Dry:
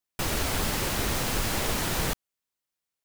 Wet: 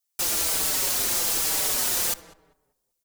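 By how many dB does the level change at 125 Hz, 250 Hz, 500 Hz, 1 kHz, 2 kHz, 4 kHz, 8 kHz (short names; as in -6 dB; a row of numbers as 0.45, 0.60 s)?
-14.0, -8.5, -4.0, -3.0, -2.0, +3.5, +9.0 dB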